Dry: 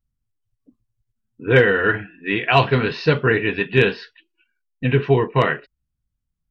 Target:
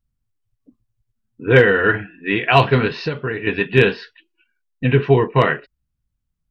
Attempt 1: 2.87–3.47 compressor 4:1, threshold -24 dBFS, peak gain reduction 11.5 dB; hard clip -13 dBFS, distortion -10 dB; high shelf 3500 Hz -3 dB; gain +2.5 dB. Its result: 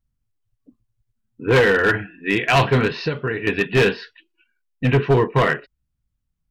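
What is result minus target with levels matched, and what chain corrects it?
hard clip: distortion +29 dB
2.87–3.47 compressor 4:1, threshold -24 dBFS, peak gain reduction 11.5 dB; hard clip -3.5 dBFS, distortion -39 dB; high shelf 3500 Hz -3 dB; gain +2.5 dB

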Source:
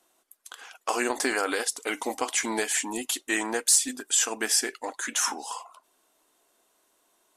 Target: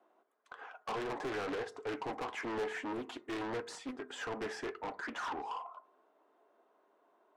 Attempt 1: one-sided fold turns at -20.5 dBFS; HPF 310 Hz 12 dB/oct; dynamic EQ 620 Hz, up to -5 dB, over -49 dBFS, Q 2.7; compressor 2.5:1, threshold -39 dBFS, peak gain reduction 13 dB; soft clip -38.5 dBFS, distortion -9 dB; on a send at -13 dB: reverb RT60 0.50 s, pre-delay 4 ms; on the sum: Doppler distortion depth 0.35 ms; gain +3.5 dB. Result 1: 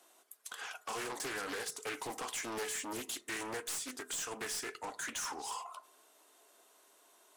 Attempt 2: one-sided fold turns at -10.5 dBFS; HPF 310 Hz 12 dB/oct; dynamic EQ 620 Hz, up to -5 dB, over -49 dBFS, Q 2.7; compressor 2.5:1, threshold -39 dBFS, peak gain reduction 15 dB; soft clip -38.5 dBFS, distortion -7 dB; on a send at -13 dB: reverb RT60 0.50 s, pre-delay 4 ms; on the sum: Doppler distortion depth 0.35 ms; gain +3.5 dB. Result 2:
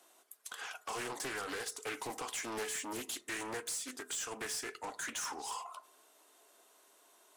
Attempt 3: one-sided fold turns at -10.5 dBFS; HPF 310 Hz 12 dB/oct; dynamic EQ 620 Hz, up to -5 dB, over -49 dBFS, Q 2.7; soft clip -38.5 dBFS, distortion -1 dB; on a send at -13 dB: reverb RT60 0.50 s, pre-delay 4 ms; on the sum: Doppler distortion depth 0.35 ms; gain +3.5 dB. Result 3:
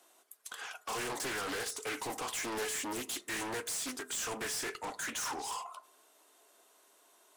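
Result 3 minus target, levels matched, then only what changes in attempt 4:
1000 Hz band -3.0 dB
add after dynamic EQ: LPF 1100 Hz 12 dB/oct

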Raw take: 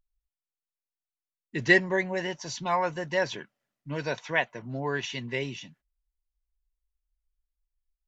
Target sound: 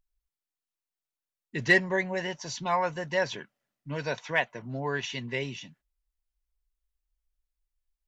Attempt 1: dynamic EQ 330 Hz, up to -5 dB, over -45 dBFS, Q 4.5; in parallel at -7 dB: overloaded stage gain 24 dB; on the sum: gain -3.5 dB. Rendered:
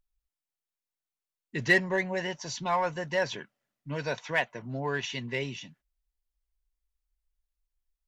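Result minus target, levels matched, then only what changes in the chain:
overloaded stage: distortion +10 dB
change: overloaded stage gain 15 dB

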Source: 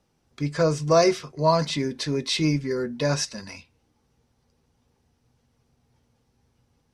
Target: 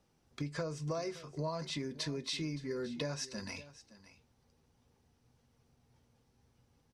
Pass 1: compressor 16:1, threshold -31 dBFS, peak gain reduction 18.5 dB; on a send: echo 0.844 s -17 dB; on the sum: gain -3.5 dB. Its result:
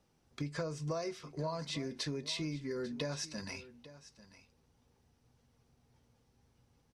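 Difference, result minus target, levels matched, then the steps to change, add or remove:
echo 0.276 s late
change: echo 0.568 s -17 dB

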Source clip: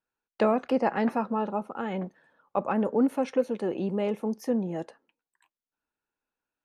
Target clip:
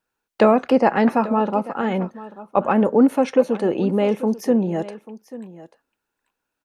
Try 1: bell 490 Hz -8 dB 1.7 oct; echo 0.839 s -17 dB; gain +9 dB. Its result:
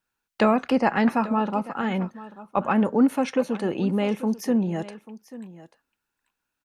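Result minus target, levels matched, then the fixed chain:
500 Hz band -3.0 dB
echo 0.839 s -17 dB; gain +9 dB

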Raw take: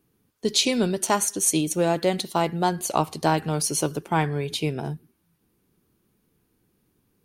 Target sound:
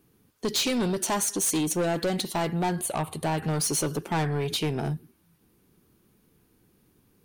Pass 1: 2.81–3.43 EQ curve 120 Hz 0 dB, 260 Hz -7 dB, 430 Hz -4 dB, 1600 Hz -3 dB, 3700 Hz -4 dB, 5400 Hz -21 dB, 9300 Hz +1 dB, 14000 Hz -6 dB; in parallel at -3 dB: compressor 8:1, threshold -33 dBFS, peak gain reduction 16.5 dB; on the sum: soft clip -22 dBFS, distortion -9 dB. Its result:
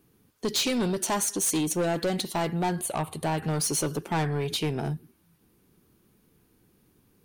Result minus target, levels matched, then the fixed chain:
compressor: peak gain reduction +5.5 dB
2.81–3.43 EQ curve 120 Hz 0 dB, 260 Hz -7 dB, 430 Hz -4 dB, 1600 Hz -3 dB, 3700 Hz -4 dB, 5400 Hz -21 dB, 9300 Hz +1 dB, 14000 Hz -6 dB; in parallel at -3 dB: compressor 8:1, threshold -26.5 dBFS, peak gain reduction 11 dB; on the sum: soft clip -22 dBFS, distortion -8 dB

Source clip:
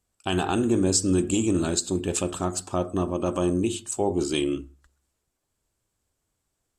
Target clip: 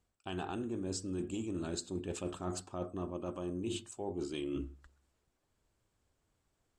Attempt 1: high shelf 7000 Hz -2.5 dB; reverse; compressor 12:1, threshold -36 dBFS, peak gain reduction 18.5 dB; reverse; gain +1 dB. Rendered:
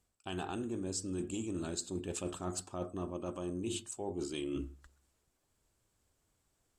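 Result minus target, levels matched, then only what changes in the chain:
8000 Hz band +4.0 dB
change: high shelf 7000 Hz -14.5 dB

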